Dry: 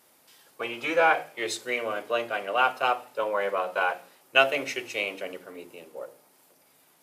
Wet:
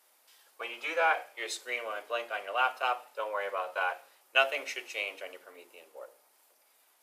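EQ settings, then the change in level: high-pass 570 Hz 12 dB/octave; -4.5 dB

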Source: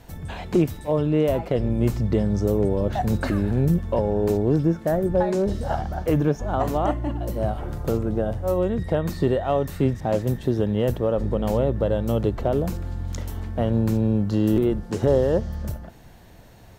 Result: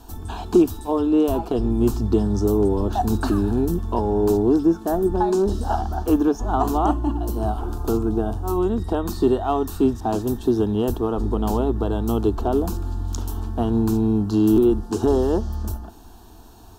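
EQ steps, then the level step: static phaser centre 550 Hz, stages 6; +6.0 dB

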